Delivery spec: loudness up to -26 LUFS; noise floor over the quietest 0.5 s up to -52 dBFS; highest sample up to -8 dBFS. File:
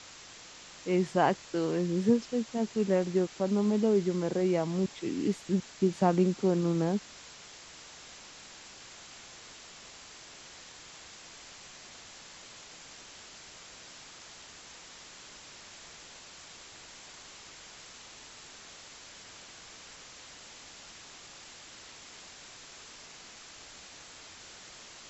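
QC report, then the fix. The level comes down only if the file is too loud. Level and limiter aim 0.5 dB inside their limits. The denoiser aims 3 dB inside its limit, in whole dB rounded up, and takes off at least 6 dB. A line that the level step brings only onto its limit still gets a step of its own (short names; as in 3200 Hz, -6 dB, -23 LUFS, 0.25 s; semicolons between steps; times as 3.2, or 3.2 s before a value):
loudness -29.0 LUFS: OK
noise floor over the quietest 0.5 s -50 dBFS: fail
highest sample -11.5 dBFS: OK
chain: denoiser 6 dB, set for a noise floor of -50 dBFS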